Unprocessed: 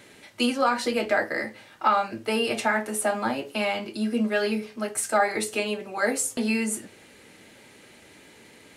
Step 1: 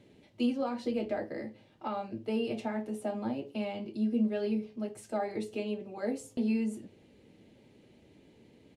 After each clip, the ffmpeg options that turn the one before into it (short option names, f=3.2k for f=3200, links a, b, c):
-af "firequalizer=gain_entry='entry(130,0);entry(1400,-21);entry(2900,-13);entry(8700,-23)':delay=0.05:min_phase=1,volume=-1.5dB"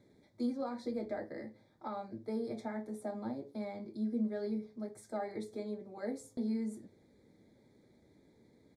-af "asuperstop=centerf=2800:order=8:qfactor=2.6,volume=-5.5dB"